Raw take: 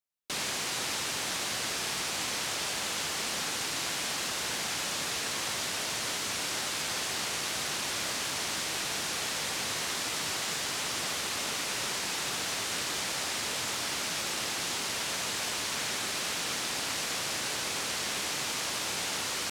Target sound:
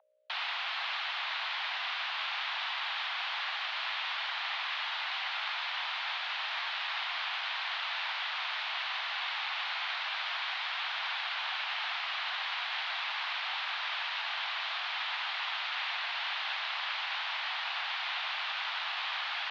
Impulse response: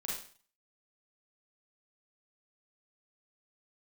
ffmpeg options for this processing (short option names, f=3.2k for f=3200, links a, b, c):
-af "aeval=exprs='val(0)+0.00447*(sin(2*PI*60*n/s)+sin(2*PI*2*60*n/s)/2+sin(2*PI*3*60*n/s)/3+sin(2*PI*4*60*n/s)/4+sin(2*PI*5*60*n/s)/5)':c=same,highpass=f=420:t=q:w=0.5412,highpass=f=420:t=q:w=1.307,lowpass=f=3.5k:t=q:w=0.5176,lowpass=f=3.5k:t=q:w=0.7071,lowpass=f=3.5k:t=q:w=1.932,afreqshift=320,volume=1.5dB"